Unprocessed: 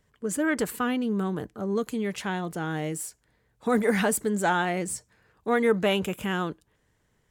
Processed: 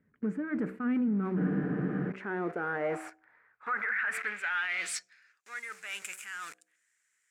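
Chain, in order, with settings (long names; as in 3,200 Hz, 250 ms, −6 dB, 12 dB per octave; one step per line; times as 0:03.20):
hum removal 63.54 Hz, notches 12
in parallel at −10 dB: log-companded quantiser 2 bits
on the sum: flat-topped bell 1,800 Hz +14 dB 1.2 octaves
reversed playback
downward compressor 5 to 1, threshold −26 dBFS, peak gain reduction 14.5 dB
reversed playback
dynamic equaliser 1,000 Hz, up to +5 dB, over −42 dBFS, Q 0.91
band-pass filter sweep 230 Hz → 7,800 Hz, 0:01.86–0:05.63
brickwall limiter −30 dBFS, peak gain reduction 14 dB
frozen spectrum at 0:01.39, 0.70 s
level +6.5 dB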